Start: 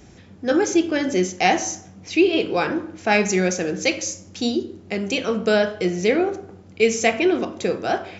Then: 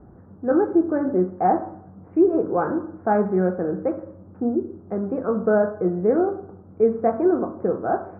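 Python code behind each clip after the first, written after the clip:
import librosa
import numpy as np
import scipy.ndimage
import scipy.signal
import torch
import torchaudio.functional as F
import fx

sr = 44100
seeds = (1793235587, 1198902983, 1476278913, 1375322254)

y = scipy.signal.sosfilt(scipy.signal.butter(8, 1400.0, 'lowpass', fs=sr, output='sos'), x)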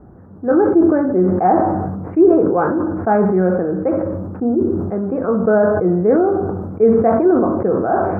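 y = fx.sustainer(x, sr, db_per_s=30.0)
y = y * librosa.db_to_amplitude(4.5)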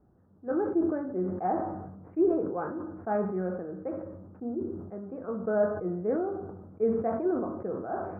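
y = fx.comb_fb(x, sr, f0_hz=620.0, decay_s=0.53, harmonics='all', damping=0.0, mix_pct=60)
y = fx.upward_expand(y, sr, threshold_db=-32.0, expansion=1.5)
y = y * librosa.db_to_amplitude(-5.0)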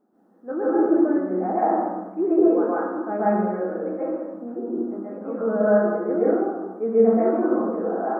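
y = fx.brickwall_highpass(x, sr, low_hz=190.0)
y = fx.rev_plate(y, sr, seeds[0], rt60_s=0.93, hf_ratio=0.8, predelay_ms=115, drr_db=-8.5)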